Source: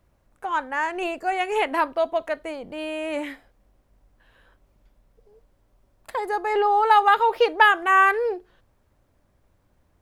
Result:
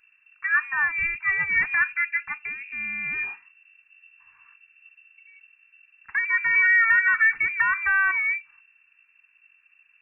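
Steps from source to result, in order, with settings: tracing distortion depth 0.031 ms; peak limiter -14.5 dBFS, peak gain reduction 11 dB; static phaser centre 570 Hz, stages 6; frequency inversion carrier 2.7 kHz; trim +4 dB

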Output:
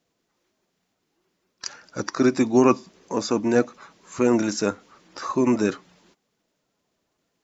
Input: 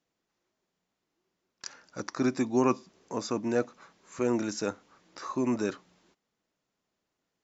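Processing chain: coarse spectral quantiser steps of 15 dB; trim +8.5 dB

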